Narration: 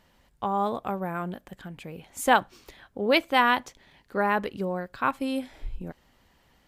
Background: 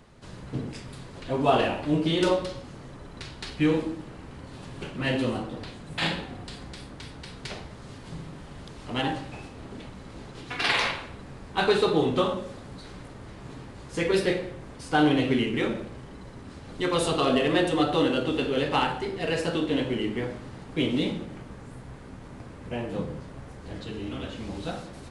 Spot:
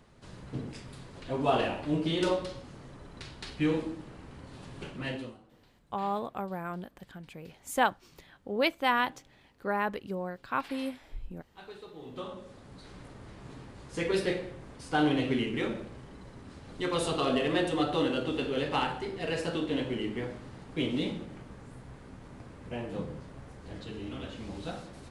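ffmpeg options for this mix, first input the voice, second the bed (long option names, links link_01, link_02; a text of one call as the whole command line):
ffmpeg -i stem1.wav -i stem2.wav -filter_complex "[0:a]adelay=5500,volume=-5.5dB[link_01];[1:a]volume=15dB,afade=type=out:start_time=4.9:duration=0.47:silence=0.1,afade=type=in:start_time=11.98:duration=1.1:silence=0.1[link_02];[link_01][link_02]amix=inputs=2:normalize=0" out.wav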